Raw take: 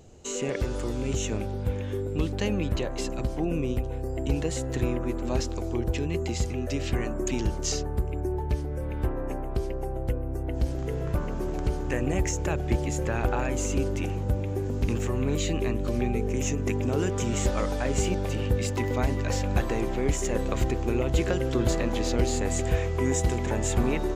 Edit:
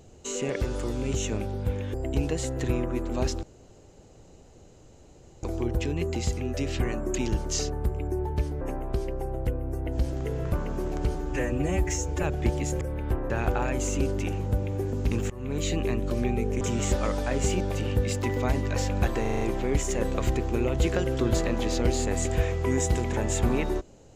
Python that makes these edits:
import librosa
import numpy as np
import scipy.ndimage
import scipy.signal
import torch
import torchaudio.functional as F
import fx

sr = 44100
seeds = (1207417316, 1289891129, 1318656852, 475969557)

y = fx.edit(x, sr, fx.cut(start_s=1.94, length_s=2.13),
    fx.insert_room_tone(at_s=5.56, length_s=2.0),
    fx.move(start_s=8.74, length_s=0.49, to_s=13.07),
    fx.stretch_span(start_s=11.77, length_s=0.72, factor=1.5),
    fx.fade_in_from(start_s=15.07, length_s=0.38, floor_db=-19.5),
    fx.cut(start_s=16.38, length_s=0.77),
    fx.stutter(start_s=19.75, slice_s=0.04, count=6), tone=tone)